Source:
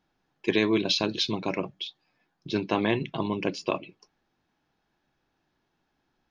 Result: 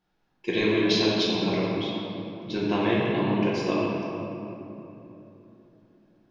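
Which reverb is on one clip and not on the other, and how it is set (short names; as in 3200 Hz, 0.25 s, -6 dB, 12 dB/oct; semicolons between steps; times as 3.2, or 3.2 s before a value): shoebox room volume 160 m³, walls hard, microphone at 0.89 m; gain -4.5 dB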